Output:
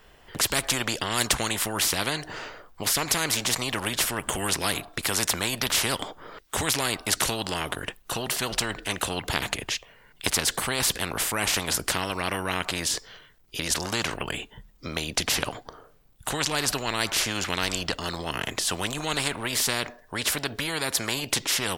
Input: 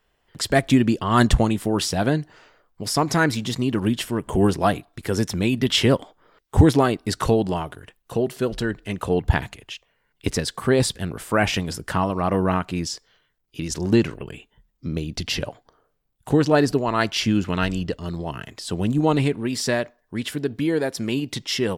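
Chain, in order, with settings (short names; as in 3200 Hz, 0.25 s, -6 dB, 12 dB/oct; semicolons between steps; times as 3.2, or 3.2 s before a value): spectral compressor 4:1; gain -3 dB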